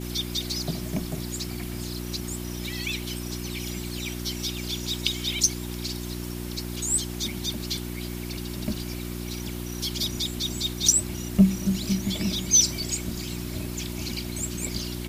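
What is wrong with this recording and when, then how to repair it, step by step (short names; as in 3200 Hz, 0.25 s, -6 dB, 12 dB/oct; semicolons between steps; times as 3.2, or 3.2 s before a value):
hum 60 Hz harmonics 6 -34 dBFS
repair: de-hum 60 Hz, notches 6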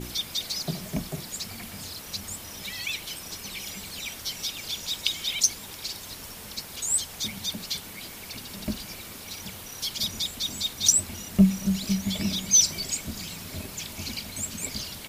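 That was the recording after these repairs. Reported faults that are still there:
none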